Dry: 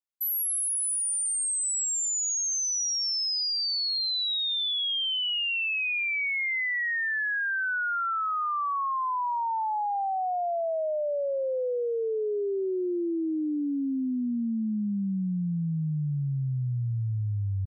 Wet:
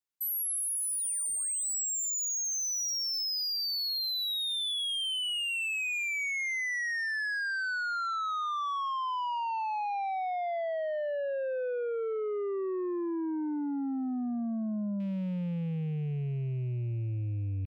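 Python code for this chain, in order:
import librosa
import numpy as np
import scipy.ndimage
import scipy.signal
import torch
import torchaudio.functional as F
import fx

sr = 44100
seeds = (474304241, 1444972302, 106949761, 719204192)

y = fx.rattle_buzz(x, sr, strikes_db=-36.0, level_db=-46.0)
y = 10.0 ** (-30.0 / 20.0) * np.tanh(y / 10.0 ** (-30.0 / 20.0))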